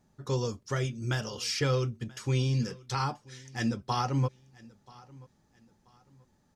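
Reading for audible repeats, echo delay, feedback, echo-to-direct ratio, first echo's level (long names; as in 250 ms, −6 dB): 2, 983 ms, 31%, −22.5 dB, −23.0 dB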